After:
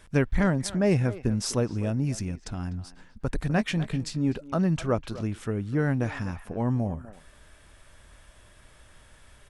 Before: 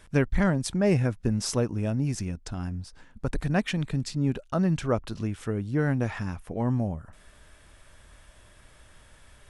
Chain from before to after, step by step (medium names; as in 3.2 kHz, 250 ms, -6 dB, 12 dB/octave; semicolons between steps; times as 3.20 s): 3.49–4.33 s: doubling 18 ms -10 dB; speakerphone echo 250 ms, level -14 dB